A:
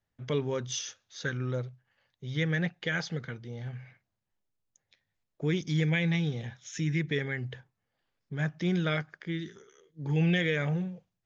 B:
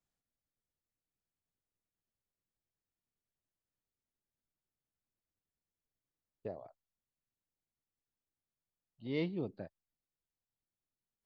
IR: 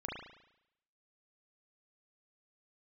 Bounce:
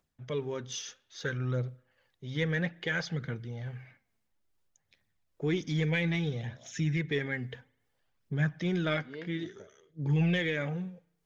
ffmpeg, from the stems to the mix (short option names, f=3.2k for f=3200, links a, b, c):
-filter_complex "[0:a]dynaudnorm=f=120:g=13:m=5dB,asoftclip=type=tanh:threshold=-10.5dB,volume=-5.5dB,asplit=2[a][b];[b]volume=-22dB[c];[1:a]acompressor=mode=upward:threshold=-59dB:ratio=2.5,tremolo=f=2.4:d=0.57,volume=-9.5dB,asplit=2[d][e];[e]volume=-13.5dB[f];[2:a]atrim=start_sample=2205[g];[c][f]amix=inputs=2:normalize=0[h];[h][g]afir=irnorm=-1:irlink=0[i];[a][d][i]amix=inputs=3:normalize=0,highshelf=f=5.2k:g=-4.5,aphaser=in_gain=1:out_gain=1:delay=4.6:decay=0.37:speed=0.6:type=triangular"